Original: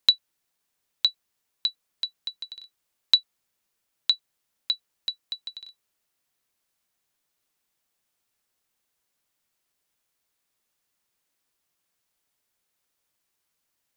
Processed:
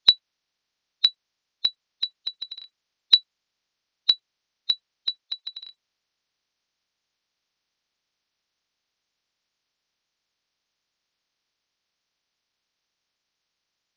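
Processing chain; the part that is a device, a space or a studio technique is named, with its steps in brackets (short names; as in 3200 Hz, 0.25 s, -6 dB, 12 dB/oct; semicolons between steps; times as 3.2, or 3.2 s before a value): 5.24–5.65 Chebyshev high-pass 730 Hz, order 2; clip after many re-uploads (LPF 5000 Hz 24 dB/oct; bin magnitudes rounded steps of 30 dB); high shelf 3400 Hz +9.5 dB; gain -1 dB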